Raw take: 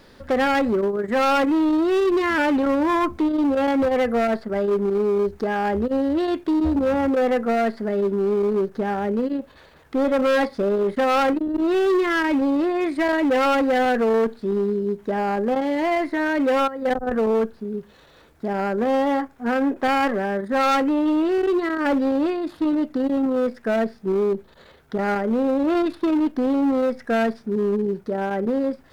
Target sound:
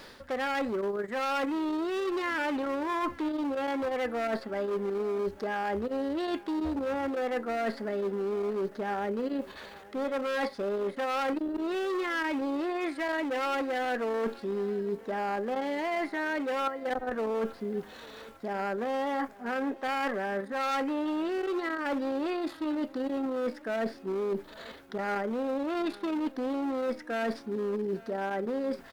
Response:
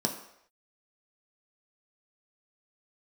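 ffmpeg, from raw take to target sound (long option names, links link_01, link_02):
-af "lowshelf=frequency=420:gain=-10,areverse,acompressor=threshold=-35dB:ratio=6,areverse,aecho=1:1:846|1692|2538|3384:0.0891|0.0437|0.0214|0.0105,volume=5.5dB"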